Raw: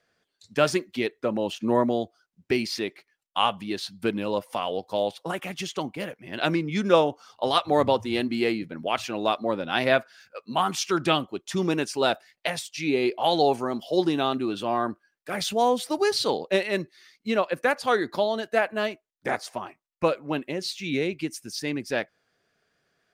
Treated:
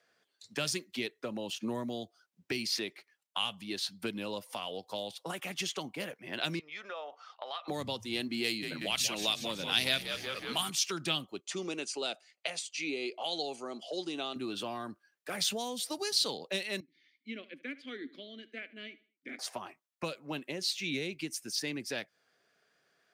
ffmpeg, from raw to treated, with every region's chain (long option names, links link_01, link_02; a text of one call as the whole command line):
ffmpeg -i in.wav -filter_complex "[0:a]asettb=1/sr,asplit=3[link_01][link_02][link_03];[link_01]atrim=end=6.594[link_04];[link_02]atrim=start=6.59:end=7.68,asetpts=PTS-STARTPTS,afade=type=in:duration=0.004:curve=qsin,afade=type=out:start_time=1.086:duration=0.004:curve=qsin,aecho=1:1:1.6:0.31,atrim=end_sample=48069,acompressor=threshold=-29dB:ratio=12:attack=3.2:release=140:knee=1:detection=peak,highpass=750,lowpass=3400[link_05];[link_03]atrim=start=7.676[link_06];[link_04][link_05]acrossfade=duration=0.004:curve1=hsin:curve2=qsin[link_07];[link_07][link_06]acrossfade=duration=0.004:curve1=qsin:curve2=hsin,asettb=1/sr,asplit=3[link_08][link_09][link_10];[link_08]atrim=end=8.444[link_11];[link_09]atrim=start=8.44:end=10.7,asetpts=PTS-STARTPTS,afade=type=in:duration=0.004:curve=qsin,afade=type=out:start_time=2.256:duration=0.004:curve=qsin,highshelf=frequency=2800:gain=11,asplit=9[link_12][link_13][link_14][link_15][link_16][link_17][link_18][link_19][link_20];[link_13]adelay=185,afreqshift=-72,volume=-10dB[link_21];[link_14]adelay=370,afreqshift=-144,volume=-13.9dB[link_22];[link_15]adelay=555,afreqshift=-216,volume=-17.8dB[link_23];[link_16]adelay=740,afreqshift=-288,volume=-21.6dB[link_24];[link_17]adelay=925,afreqshift=-360,volume=-25.5dB[link_25];[link_18]adelay=1110,afreqshift=-432,volume=-29.4dB[link_26];[link_19]adelay=1295,afreqshift=-504,volume=-33.3dB[link_27];[link_20]adelay=1480,afreqshift=-576,volume=-37.1dB[link_28];[link_12][link_21][link_22][link_23][link_24][link_25][link_26][link_27][link_28]amix=inputs=9:normalize=0,atrim=end_sample=99666[link_29];[link_10]atrim=start=10.696[link_30];[link_11][link_29]acrossfade=duration=0.004:curve1=hsin:curve2=qsin[link_31];[link_31][link_30]acrossfade=duration=0.004:curve1=qsin:curve2=hsin,asettb=1/sr,asplit=3[link_32][link_33][link_34];[link_32]atrim=end=11.404[link_35];[link_33]atrim=start=11.4:end=14.36,asetpts=PTS-STARTPTS,afade=type=in:duration=0.004:curve=qsin,afade=type=out:start_time=2.956:duration=0.004:curve=qsin,highpass=300,equalizer=frequency=950:width_type=q:width=4:gain=-7,equalizer=frequency=1700:width_type=q:width=4:gain=-8,equalizer=frequency=3700:width_type=q:width=4:gain=-5,lowpass=frequency=8400:width=0.5412,lowpass=frequency=8400:width=1.3066,bandreject=frequency=5400:width=8.4[link_36];[link_34]atrim=start=14.356[link_37];[link_35][link_36]acrossfade=duration=0.004:curve1=hsin:curve2=qsin[link_38];[link_38][link_37]acrossfade=duration=0.004:curve1=qsin:curve2=hsin,asettb=1/sr,asplit=3[link_39][link_40][link_41];[link_39]atrim=end=16.804[link_42];[link_40]atrim=start=16.8:end=19.39,asetpts=PTS-STARTPTS,afade=type=in:duration=0.004:curve=qsin,afade=type=out:start_time=2.586:duration=0.004:curve=qsin,asplit=3[link_43][link_44][link_45];[link_43]bandpass=frequency=270:width_type=q:width=8,volume=0dB[link_46];[link_44]bandpass=frequency=2290:width_type=q:width=8,volume=-6dB[link_47];[link_45]bandpass=frequency=3010:width_type=q:width=8,volume=-9dB[link_48];[link_46][link_47][link_48]amix=inputs=3:normalize=0,aecho=1:1:76|152|228:0.106|0.035|0.0115,atrim=end_sample=114219[link_49];[link_41]atrim=start=19.386[link_50];[link_42][link_49]acrossfade=duration=0.004:curve1=hsin:curve2=qsin[link_51];[link_51][link_50]acrossfade=duration=0.004:curve1=qsin:curve2=hsin,highpass=91,lowshelf=frequency=220:gain=-10.5,acrossover=split=200|3000[link_52][link_53][link_54];[link_53]acompressor=threshold=-37dB:ratio=10[link_55];[link_52][link_55][link_54]amix=inputs=3:normalize=0" out.wav